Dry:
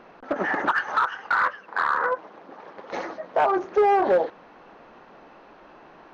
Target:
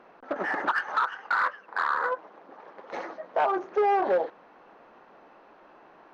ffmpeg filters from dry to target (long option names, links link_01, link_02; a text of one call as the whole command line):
ffmpeg -i in.wav -filter_complex "[0:a]lowshelf=frequency=210:gain=-10.5,asplit=2[link_01][link_02];[link_02]adynamicsmooth=sensitivity=3.5:basefreq=2700,volume=-3dB[link_03];[link_01][link_03]amix=inputs=2:normalize=0,volume=-7.5dB" out.wav